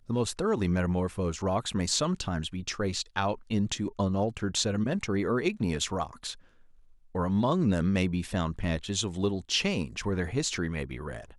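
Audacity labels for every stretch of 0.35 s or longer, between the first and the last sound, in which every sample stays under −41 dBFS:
6.340000	7.150000	silence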